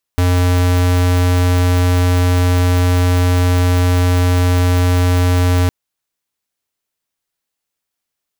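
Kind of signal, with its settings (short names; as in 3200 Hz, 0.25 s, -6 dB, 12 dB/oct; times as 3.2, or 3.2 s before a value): tone square 89.5 Hz -12.5 dBFS 5.51 s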